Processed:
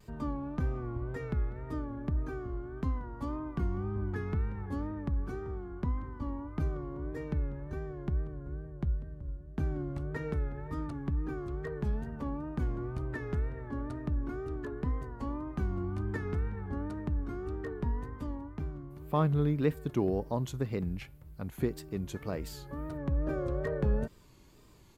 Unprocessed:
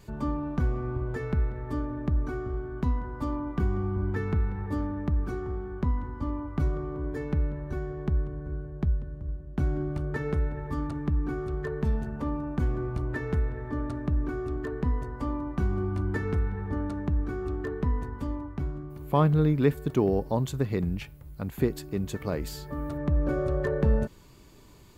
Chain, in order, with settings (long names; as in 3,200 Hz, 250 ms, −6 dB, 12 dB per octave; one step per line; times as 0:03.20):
downsampling to 32,000 Hz
tape wow and flutter 90 cents
level −5.5 dB